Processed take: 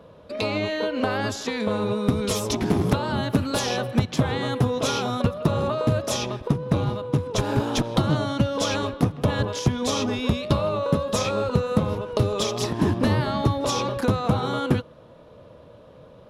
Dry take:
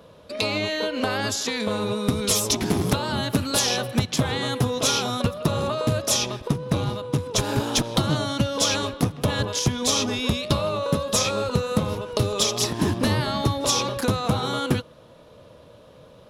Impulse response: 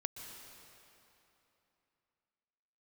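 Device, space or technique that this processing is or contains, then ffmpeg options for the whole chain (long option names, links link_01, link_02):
through cloth: -af "highshelf=frequency=3100:gain=-12,volume=1.5dB"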